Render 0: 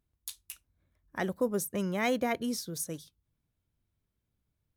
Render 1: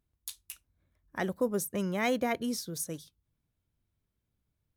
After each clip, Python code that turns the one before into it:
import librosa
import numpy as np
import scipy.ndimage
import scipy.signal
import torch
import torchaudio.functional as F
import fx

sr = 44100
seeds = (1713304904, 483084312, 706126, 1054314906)

y = x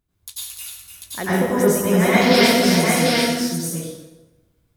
y = fx.spec_paint(x, sr, seeds[0], shape='noise', start_s=2.21, length_s=0.2, low_hz=1300.0, high_hz=5800.0, level_db=-33.0)
y = fx.echo_multitap(y, sr, ms=(294, 742), db=(-7.0, -3.0))
y = fx.rev_plate(y, sr, seeds[1], rt60_s=1.1, hf_ratio=0.7, predelay_ms=80, drr_db=-10.0)
y = y * 10.0 ** (3.5 / 20.0)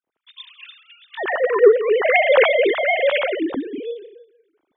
y = fx.sine_speech(x, sr)